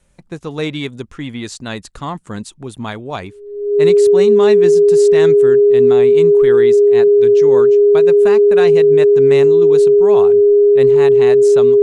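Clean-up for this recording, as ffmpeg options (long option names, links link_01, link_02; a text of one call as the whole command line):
ffmpeg -i in.wav -af "bandreject=frequency=410:width=30" out.wav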